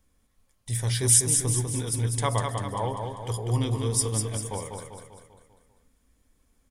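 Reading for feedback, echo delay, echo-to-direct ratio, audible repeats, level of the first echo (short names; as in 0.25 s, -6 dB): 51%, 0.197 s, -3.5 dB, 6, -5.0 dB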